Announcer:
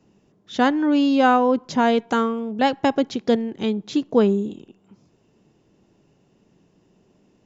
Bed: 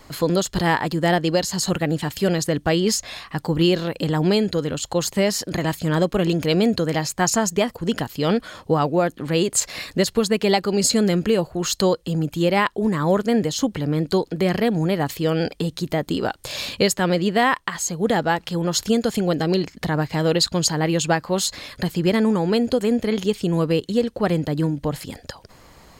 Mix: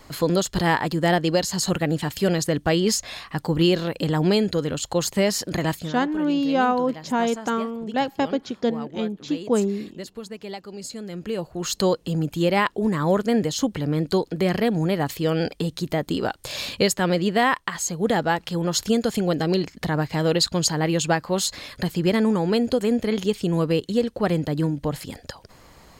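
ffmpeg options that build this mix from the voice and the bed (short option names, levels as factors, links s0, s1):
-filter_complex "[0:a]adelay=5350,volume=0.631[s0];[1:a]volume=5.01,afade=t=out:st=5.71:d=0.23:silence=0.16788,afade=t=in:st=11.08:d=0.83:silence=0.177828[s1];[s0][s1]amix=inputs=2:normalize=0"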